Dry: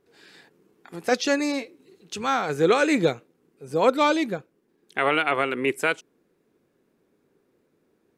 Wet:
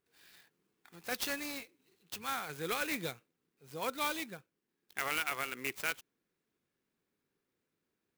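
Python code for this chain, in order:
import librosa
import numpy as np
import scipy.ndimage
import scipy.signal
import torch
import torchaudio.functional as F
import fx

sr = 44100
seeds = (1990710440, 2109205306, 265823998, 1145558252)

y = fx.tone_stack(x, sr, knobs='5-5-5')
y = fx.clock_jitter(y, sr, seeds[0], jitter_ms=0.033)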